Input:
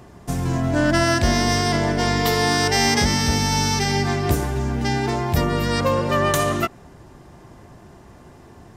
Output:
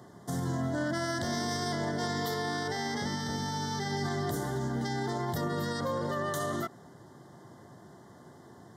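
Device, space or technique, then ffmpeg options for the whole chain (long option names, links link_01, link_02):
PA system with an anti-feedback notch: -filter_complex "[0:a]highpass=frequency=110:width=0.5412,highpass=frequency=110:width=1.3066,asuperstop=centerf=2500:order=8:qfactor=2.5,alimiter=limit=-18dB:level=0:latency=1:release=50,asettb=1/sr,asplit=3[link_01][link_02][link_03];[link_01]atrim=end=2.344[link_04];[link_02]atrim=start=2.34:end=3.97,asetpts=PTS-STARTPTS,afade=type=in:duration=0.004:curve=qsin,afade=type=out:start_time=1.626:duration=0.004:curve=qsin,acrossover=split=4200[link_05][link_06];[link_06]acompressor=threshold=-38dB:ratio=4:attack=1:release=60[link_07];[link_05][link_07]amix=inputs=2:normalize=0[link_08];[link_03]atrim=start=3.966[link_09];[link_04][link_08]acrossfade=duration=0.004:curve1=hsin:curve2=qsin[link_10];[link_10][link_09]acrossfade=duration=0.004:curve1=qsin:curve2=hsin,volume=-6dB"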